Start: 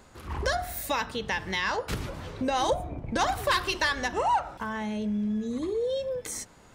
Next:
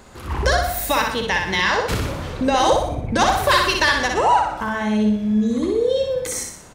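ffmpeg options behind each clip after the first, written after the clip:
-af "aecho=1:1:61|122|183|244|305|366:0.631|0.309|0.151|0.0742|0.0364|0.0178,volume=8dB"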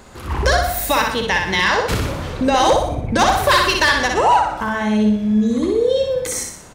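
-af "volume=9.5dB,asoftclip=hard,volume=-9.5dB,volume=2.5dB"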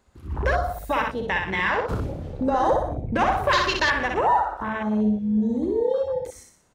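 -af "afwtdn=0.0891,volume=-6dB"

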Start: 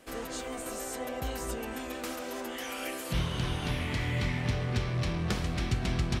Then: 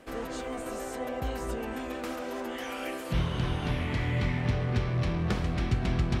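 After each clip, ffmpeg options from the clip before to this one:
-af "highshelf=f=3.5k:g=-11,areverse,acompressor=mode=upward:threshold=-35dB:ratio=2.5,areverse,volume=2.5dB"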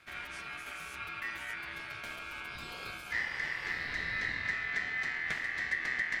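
-af "aeval=exprs='val(0)*sin(2*PI*1900*n/s)':c=same,bass=f=250:g=5,treble=f=4k:g=0,volume=-4.5dB"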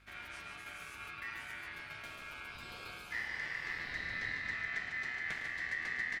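-filter_complex "[0:a]aeval=exprs='val(0)+0.001*(sin(2*PI*50*n/s)+sin(2*PI*2*50*n/s)/2+sin(2*PI*3*50*n/s)/3+sin(2*PI*4*50*n/s)/4+sin(2*PI*5*50*n/s)/5)':c=same,asplit=2[a][b];[b]aecho=0:1:107.9|148.7:0.251|0.501[c];[a][c]amix=inputs=2:normalize=0,volume=-5.5dB"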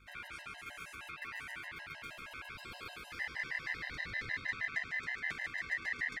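-af "afftfilt=real='re*gt(sin(2*PI*6.4*pts/sr)*(1-2*mod(floor(b*sr/1024/530),2)),0)':imag='im*gt(sin(2*PI*6.4*pts/sr)*(1-2*mod(floor(b*sr/1024/530),2)),0)':win_size=1024:overlap=0.75,volume=3dB"

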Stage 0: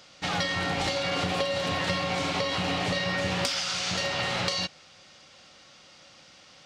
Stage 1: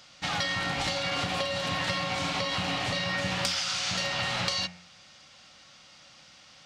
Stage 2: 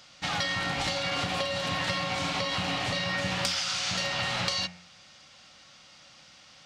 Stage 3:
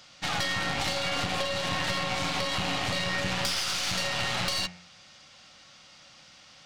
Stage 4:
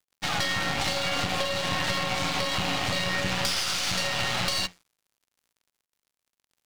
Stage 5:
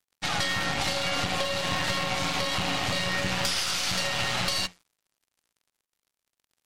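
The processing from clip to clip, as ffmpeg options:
-af "equalizer=f=410:w=1.5:g=-8,bandreject=f=88.95:t=h:w=4,bandreject=f=177.9:t=h:w=4,bandreject=f=266.85:t=h:w=4,bandreject=f=355.8:t=h:w=4,bandreject=f=444.75:t=h:w=4,bandreject=f=533.7:t=h:w=4,bandreject=f=622.65:t=h:w=4,bandreject=f=711.6:t=h:w=4,bandreject=f=800.55:t=h:w=4,bandreject=f=889.5:t=h:w=4,bandreject=f=978.45:t=h:w=4,bandreject=f=1.0674k:t=h:w=4,bandreject=f=1.15635k:t=h:w=4,bandreject=f=1.2453k:t=h:w=4,bandreject=f=1.33425k:t=h:w=4,bandreject=f=1.4232k:t=h:w=4,bandreject=f=1.51215k:t=h:w=4,bandreject=f=1.6011k:t=h:w=4,bandreject=f=1.69005k:t=h:w=4,bandreject=f=1.779k:t=h:w=4,bandreject=f=1.86795k:t=h:w=4,bandreject=f=1.9569k:t=h:w=4,bandreject=f=2.04585k:t=h:w=4,bandreject=f=2.1348k:t=h:w=4,bandreject=f=2.22375k:t=h:w=4,bandreject=f=2.3127k:t=h:w=4,bandreject=f=2.40165k:t=h:w=4,bandreject=f=2.4906k:t=h:w=4,bandreject=f=2.57955k:t=h:w=4,bandreject=f=2.6685k:t=h:w=4,bandreject=f=2.75745k:t=h:w=4,bandreject=f=2.8464k:t=h:w=4"
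-af anull
-af "aeval=exprs='(tanh(22.4*val(0)+0.7)-tanh(0.7))/22.4':c=same,volume=4.5dB"
-af "aeval=exprs='sgn(val(0))*max(abs(val(0))-0.00562,0)':c=same,volume=3dB"
-ar 48000 -c:a libmp3lame -b:a 64k

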